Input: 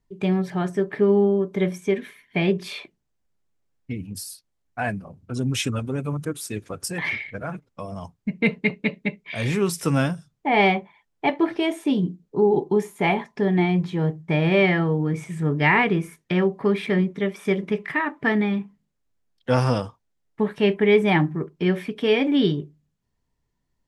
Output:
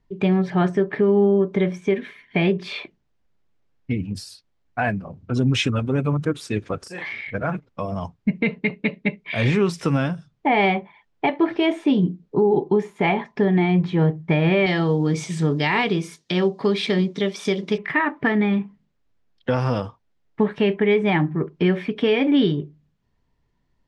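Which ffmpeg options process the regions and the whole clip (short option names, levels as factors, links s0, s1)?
-filter_complex "[0:a]asettb=1/sr,asplit=3[s0][s1][s2];[s0]atrim=end=6.784[s3];[s1]atrim=start=6.78:end=7.27,asetpts=PTS-STARTPTS,afade=t=in:d=0.004:c=qsin,afade=t=out:st=0.486:d=0.004:c=qsin,bass=f=250:g=-10,treble=f=4000:g=7,acompressor=threshold=0.0158:ratio=10:attack=3.2:release=140:knee=1:detection=peak,asplit=2[s4][s5];[s5]adelay=38,volume=0.708[s6];[s4][s6]amix=inputs=2:normalize=0,atrim=end_sample=21609[s7];[s2]atrim=start=7.266[s8];[s3][s7]acrossfade=d=0.004:c1=hsin:c2=qsin[s9];[s9][s8]acrossfade=d=0.004:c1=qsin:c2=hsin,asettb=1/sr,asplit=3[s10][s11][s12];[s10]atrim=end=14.664[s13];[s11]atrim=start=14.66:end=17.78,asetpts=PTS-STARTPTS,afade=t=in:d=0.004:c=qsin,afade=t=out:st=3.116:d=0.004:c=qsin,highpass=f=150:p=1,highshelf=f=3100:t=q:w=1.5:g=13.5[s14];[s12]atrim=start=17.776[s15];[s13][s14]acrossfade=d=0.004:c1=hsin:c2=qsin[s16];[s16][s15]acrossfade=d=0.004:c1=qsin:c2=hsin,lowpass=4200,alimiter=limit=0.15:level=0:latency=1:release=399,volume=2.11"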